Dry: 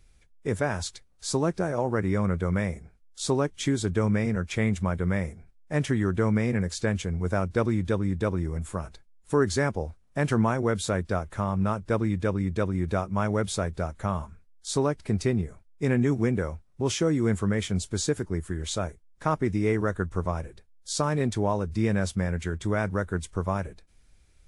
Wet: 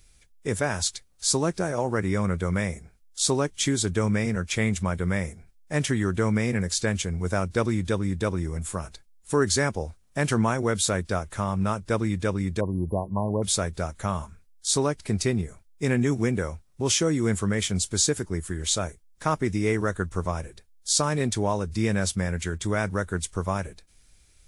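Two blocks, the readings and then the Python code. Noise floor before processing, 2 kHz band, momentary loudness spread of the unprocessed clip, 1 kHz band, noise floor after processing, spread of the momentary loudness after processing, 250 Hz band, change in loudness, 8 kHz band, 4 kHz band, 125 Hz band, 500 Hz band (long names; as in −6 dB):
−59 dBFS, +2.5 dB, 8 LU, +1.0 dB, −58 dBFS, 8 LU, 0.0 dB, +1.5 dB, +9.5 dB, +7.0 dB, 0.0 dB, +0.5 dB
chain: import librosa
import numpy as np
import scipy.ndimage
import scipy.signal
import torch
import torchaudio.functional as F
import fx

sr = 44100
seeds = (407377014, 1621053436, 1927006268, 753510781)

y = fx.spec_erase(x, sr, start_s=12.6, length_s=0.83, low_hz=1100.0, high_hz=10000.0)
y = fx.high_shelf(y, sr, hz=3000.0, db=11.0)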